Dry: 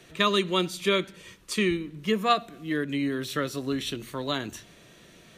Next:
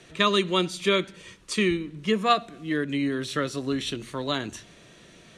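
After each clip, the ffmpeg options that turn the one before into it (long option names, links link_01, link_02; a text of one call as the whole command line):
ffmpeg -i in.wav -af "lowpass=frequency=10000:width=0.5412,lowpass=frequency=10000:width=1.3066,volume=1.5dB" out.wav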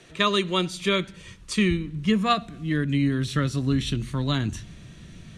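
ffmpeg -i in.wav -af "asubboost=boost=9.5:cutoff=160" out.wav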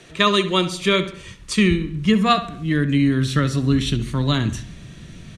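ffmpeg -i in.wav -filter_complex "[0:a]asplit=2[link_01][link_02];[link_02]adelay=68,lowpass=frequency=3900:poles=1,volume=-12.5dB,asplit=2[link_03][link_04];[link_04]adelay=68,lowpass=frequency=3900:poles=1,volume=0.45,asplit=2[link_05][link_06];[link_06]adelay=68,lowpass=frequency=3900:poles=1,volume=0.45,asplit=2[link_07][link_08];[link_08]adelay=68,lowpass=frequency=3900:poles=1,volume=0.45[link_09];[link_01][link_03][link_05][link_07][link_09]amix=inputs=5:normalize=0,volume=5dB" out.wav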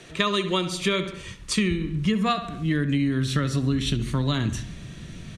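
ffmpeg -i in.wav -af "acompressor=threshold=-20dB:ratio=5" out.wav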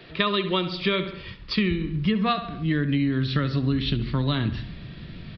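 ffmpeg -i in.wav -af "aresample=11025,aresample=44100" out.wav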